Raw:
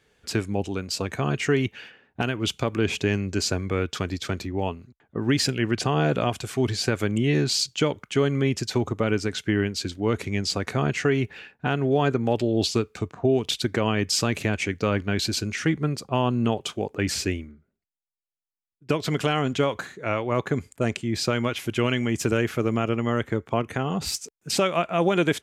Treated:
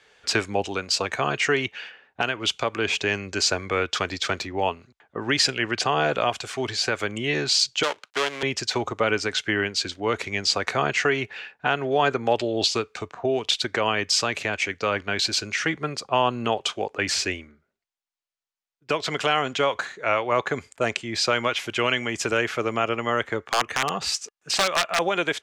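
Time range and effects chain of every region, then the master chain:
7.83–8.43 switching dead time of 0.24 ms + weighting filter A
23.41–24.99 small resonant body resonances 1200/1700/2800 Hz, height 7 dB, ringing for 35 ms + wrapped overs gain 15 dB
whole clip: three-band isolator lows -15 dB, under 490 Hz, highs -18 dB, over 7900 Hz; vocal rider 2 s; gain +5 dB

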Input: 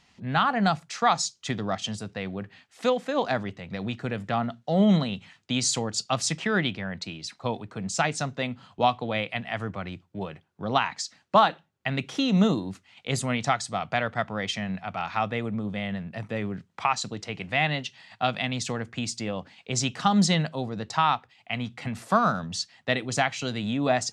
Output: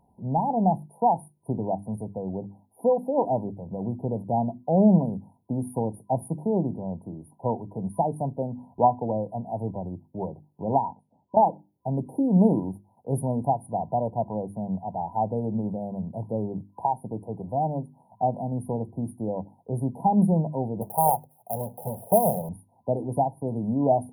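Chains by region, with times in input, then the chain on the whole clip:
10.91–11.37 compressor 2.5:1, threshold -35 dBFS + air absorption 140 m
20.81–22.49 half-waves squared off + HPF 150 Hz + fixed phaser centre 1100 Hz, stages 6
whole clip: notches 50/100/150/200/250/300/350 Hz; FFT band-reject 1000–9400 Hz; gain +3 dB

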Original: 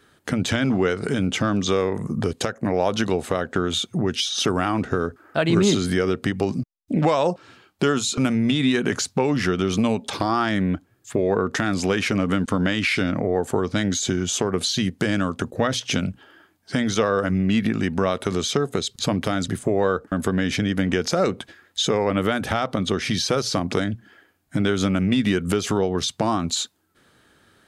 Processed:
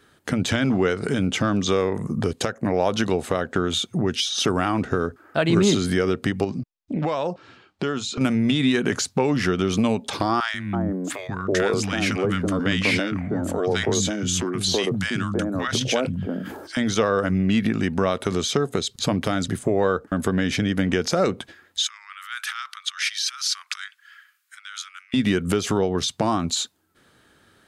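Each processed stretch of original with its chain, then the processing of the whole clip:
6.44–8.21 LPF 5500 Hz + compressor 1.5:1, threshold -29 dBFS
10.4–16.77 three bands offset in time highs, lows, mids 0.14/0.33 s, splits 220/1000 Hz + sustainer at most 45 dB/s
21.84–25.14 negative-ratio compressor -27 dBFS + steep high-pass 1200 Hz 48 dB/oct
whole clip: dry

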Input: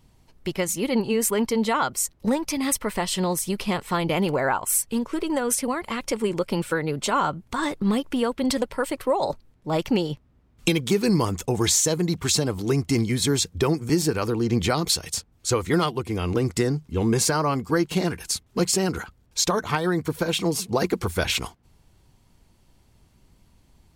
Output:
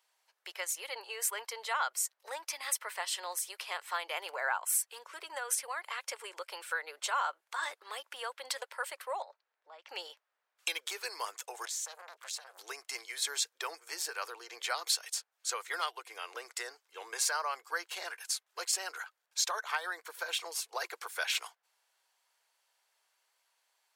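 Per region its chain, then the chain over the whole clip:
9.22–9.89 LPF 5600 Hz + high shelf 3500 Hz -7.5 dB + compressor 4:1, threshold -37 dBFS
11.65–12.58 compressor 12:1, threshold -25 dBFS + core saturation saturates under 1400 Hz
whole clip: Bessel high-pass 940 Hz, order 8; bell 1600 Hz +5 dB 0.39 oct; gain -7.5 dB

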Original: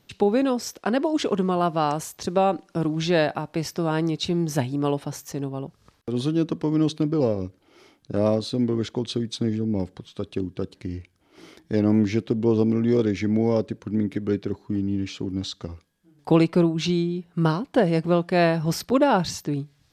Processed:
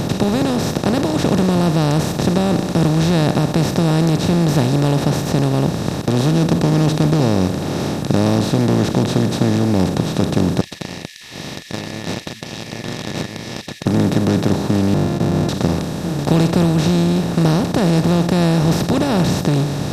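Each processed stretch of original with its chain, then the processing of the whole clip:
10.61–13.86 brick-wall FIR high-pass 1700 Hz + air absorption 250 m + Doppler distortion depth 0.26 ms
14.94–15.49 sample sorter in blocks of 128 samples + hard clip -30.5 dBFS + band-pass 140 Hz, Q 0.8
whole clip: per-bin compression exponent 0.2; tone controls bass +15 dB, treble +6 dB; gain -8 dB

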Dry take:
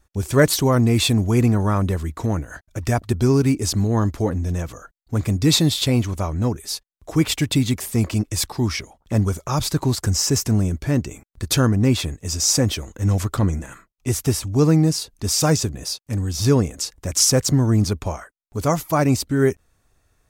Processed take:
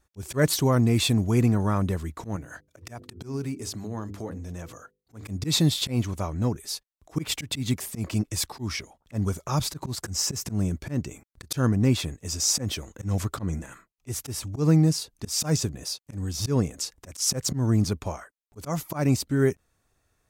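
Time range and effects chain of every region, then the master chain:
2.36–5.28 HPF 77 Hz + notches 50/100/150/200/250/300/350/400/450/500 Hz + compressor 2:1, threshold -29 dBFS
whole clip: dynamic EQ 150 Hz, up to +4 dB, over -27 dBFS, Q 1.5; auto swell 0.126 s; low shelf 63 Hz -7.5 dB; gain -5 dB

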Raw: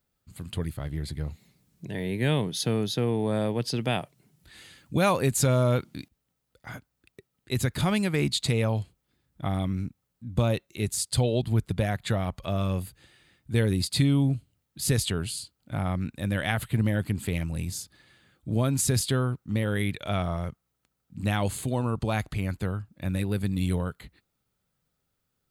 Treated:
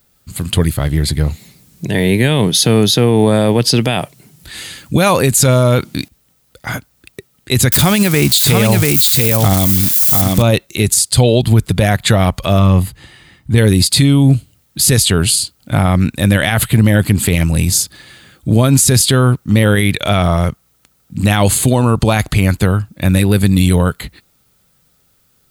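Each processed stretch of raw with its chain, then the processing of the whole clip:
7.72–10.42 switching spikes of -26.5 dBFS + echo 0.689 s -3 dB
12.59–13.58 high shelf 3800 Hz -10.5 dB + comb 1 ms, depth 32%
whole clip: high shelf 3500 Hz +6.5 dB; maximiser +18.5 dB; gain -1 dB

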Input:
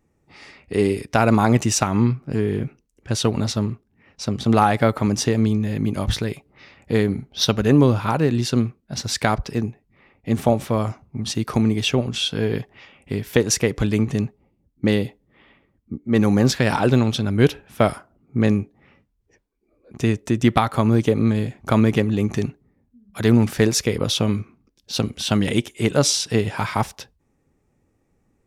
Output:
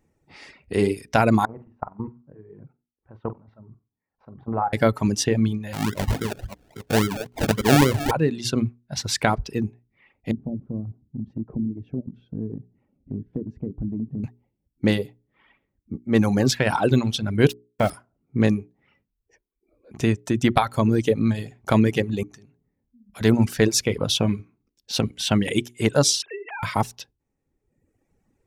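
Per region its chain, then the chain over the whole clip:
1.45–4.73 level quantiser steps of 17 dB + ladder low-pass 1300 Hz, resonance 40% + flutter echo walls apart 7.9 m, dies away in 0.29 s
5.73–8.11 reverse delay 0.271 s, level -8 dB + decimation with a swept rate 35×, swing 60% 3.6 Hz
10.31–14.24 synth low-pass 260 Hz, resonance Q 1.9 + compressor 2:1, threshold -30 dBFS
17.5–17.9 sample gate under -30.5 dBFS + core saturation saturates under 470 Hz
22.23–23.21 compressor 4:1, threshold -38 dBFS + de-hum 84.86 Hz, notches 15
26.22–26.63 sine-wave speech + compressor 20:1, threshold -29 dBFS
whole clip: notches 60/120/180/240/300/360/420 Hz; reverb removal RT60 1.1 s; notch 1200 Hz, Q 12

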